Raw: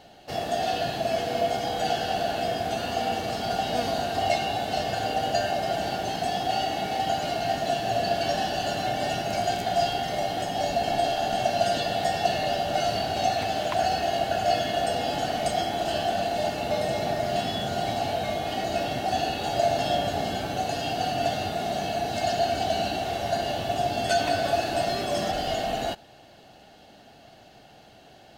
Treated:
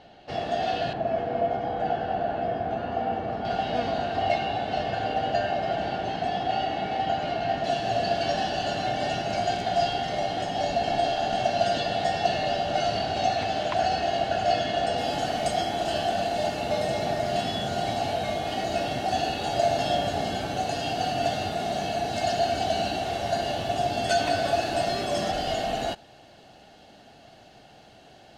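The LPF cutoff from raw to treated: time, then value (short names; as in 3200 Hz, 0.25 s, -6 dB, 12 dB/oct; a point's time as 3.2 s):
3900 Hz
from 0.93 s 1500 Hz
from 3.45 s 3100 Hz
from 7.64 s 5900 Hz
from 14.98 s 11000 Hz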